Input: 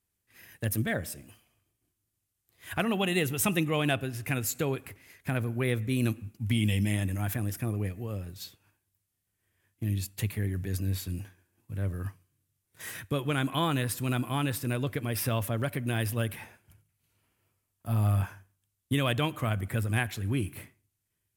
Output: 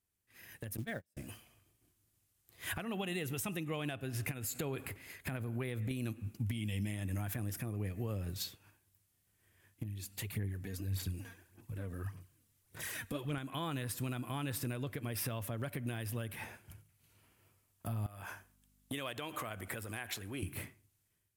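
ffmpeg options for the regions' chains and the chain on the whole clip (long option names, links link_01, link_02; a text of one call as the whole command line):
ffmpeg -i in.wav -filter_complex "[0:a]asettb=1/sr,asplit=3[link_01][link_02][link_03];[link_01]atrim=end=0.774[link_04];[link_02]atrim=start=0.77:end=1.17,asetpts=PTS-STARTPTS,afade=type=in:duration=0.004:curve=qsin,afade=type=out:start_time=0.396:duration=0.004:curve=qsin,agate=range=-44dB:threshold=-31dB:ratio=16:release=100:detection=peak,acrusher=bits=6:mode=log:mix=0:aa=0.000001[link_05];[link_03]atrim=start=1.166[link_06];[link_04][link_05]acrossfade=duration=0.004:curve1=hsin:curve2=qsin[link_07];[link_07][link_06]acrossfade=duration=0.004:curve1=qsin:curve2=hsin,asettb=1/sr,asplit=3[link_08][link_09][link_10];[link_08]atrim=end=4.314[link_11];[link_09]atrim=start=4.31:end=5.91,asetpts=PTS-STARTPTS,afade=type=in:duration=0.004:curve=qsin,afade=type=out:start_time=1.596:duration=0.004:curve=qsin,bandreject=frequency=5800:width=7.3,acompressor=threshold=-35dB:ratio=4:attack=3.2:release=140:knee=1:detection=peak[link_12];[link_10]atrim=start=5.906[link_13];[link_11][link_12]acrossfade=duration=0.004:curve1=hsin:curve2=qsin[link_14];[link_14][link_13]acrossfade=duration=0.004:curve1=qsin:curve2=hsin,asettb=1/sr,asplit=3[link_15][link_16][link_17];[link_15]atrim=end=9.834[link_18];[link_16]atrim=start=9.83:end=13.38,asetpts=PTS-STARTPTS,afade=type=in:duration=0.004:curve=qsin,afade=type=out:start_time=3.546:duration=0.004:curve=qsin,acompressor=threshold=-49dB:ratio=2.5:attack=3.2:release=140:knee=1:detection=peak,aphaser=in_gain=1:out_gain=1:delay=4.4:decay=0.58:speed=1.7:type=sinusoidal[link_19];[link_17]atrim=start=13.376[link_20];[link_18][link_19]acrossfade=duration=0.004:curve1=hsin:curve2=qsin[link_21];[link_21][link_20]acrossfade=duration=0.004:curve1=qsin:curve2=hsin,asettb=1/sr,asplit=3[link_22][link_23][link_24];[link_22]atrim=end=18.064[link_25];[link_23]atrim=start=18.06:end=20.43,asetpts=PTS-STARTPTS,afade=type=in:duration=0.004:curve=qsin,afade=type=out:start_time=2.366:duration=0.004:curve=qsin,acompressor=threshold=-34dB:ratio=6:attack=3.2:release=140:knee=1:detection=peak,aeval=exprs='val(0)+0.000631*(sin(2*PI*50*n/s)+sin(2*PI*2*50*n/s)/2+sin(2*PI*3*50*n/s)/3+sin(2*PI*4*50*n/s)/4+sin(2*PI*5*50*n/s)/5)':channel_layout=same,bass=frequency=250:gain=-13,treble=frequency=4000:gain=1[link_26];[link_24]atrim=start=20.426[link_27];[link_25][link_26]acrossfade=duration=0.004:curve1=hsin:curve2=qsin[link_28];[link_28][link_27]acrossfade=duration=0.004:curve1=qsin:curve2=hsin,acompressor=threshold=-35dB:ratio=6,alimiter=level_in=8.5dB:limit=-24dB:level=0:latency=1:release=409,volume=-8.5dB,dynaudnorm=framelen=420:gausssize=3:maxgain=10dB,volume=-5dB" out.wav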